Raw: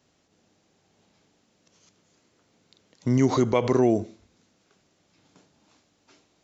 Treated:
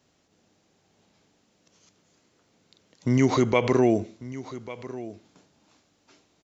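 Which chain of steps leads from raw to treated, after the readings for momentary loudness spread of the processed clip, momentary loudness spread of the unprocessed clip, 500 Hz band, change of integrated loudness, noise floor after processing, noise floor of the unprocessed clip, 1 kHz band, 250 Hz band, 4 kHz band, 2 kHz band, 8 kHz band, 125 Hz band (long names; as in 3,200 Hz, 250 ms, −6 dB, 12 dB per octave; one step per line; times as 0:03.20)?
17 LU, 11 LU, 0.0 dB, −2.0 dB, −68 dBFS, −68 dBFS, +0.5 dB, 0.0 dB, +2.5 dB, +6.0 dB, can't be measured, 0.0 dB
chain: dynamic equaliser 2,400 Hz, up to +7 dB, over −50 dBFS, Q 1.6
on a send: single-tap delay 1,145 ms −16 dB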